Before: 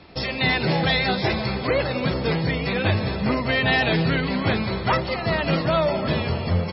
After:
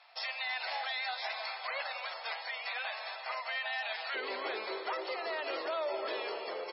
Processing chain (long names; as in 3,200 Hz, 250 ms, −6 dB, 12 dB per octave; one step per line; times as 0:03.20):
elliptic high-pass filter 690 Hz, stop band 70 dB, from 0:04.14 380 Hz
brickwall limiter −19.5 dBFS, peak gain reduction 10 dB
level −8 dB